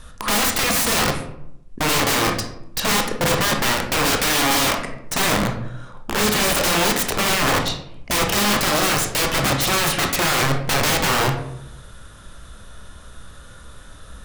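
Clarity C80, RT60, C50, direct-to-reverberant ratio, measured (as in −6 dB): 10.0 dB, 0.75 s, 7.0 dB, 2.5 dB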